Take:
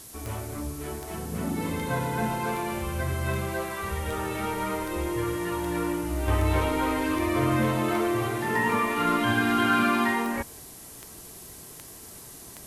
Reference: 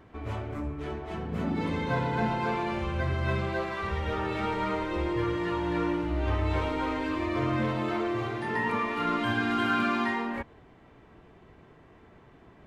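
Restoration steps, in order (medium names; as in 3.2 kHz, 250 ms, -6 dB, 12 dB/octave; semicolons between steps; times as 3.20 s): de-click; noise print and reduce 10 dB; trim 0 dB, from 6.28 s -4 dB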